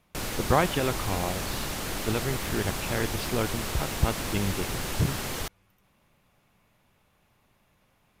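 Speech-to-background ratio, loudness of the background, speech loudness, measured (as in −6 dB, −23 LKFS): 1.5 dB, −32.0 LKFS, −30.5 LKFS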